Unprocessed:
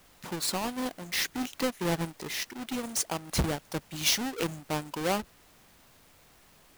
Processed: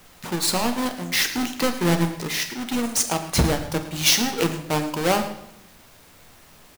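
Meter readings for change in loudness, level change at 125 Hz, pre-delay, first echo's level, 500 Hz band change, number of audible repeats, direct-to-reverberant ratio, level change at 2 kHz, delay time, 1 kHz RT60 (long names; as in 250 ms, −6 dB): +8.5 dB, +9.5 dB, 9 ms, −14.0 dB, +8.5 dB, 2, 5.5 dB, +8.5 dB, 46 ms, 0.75 s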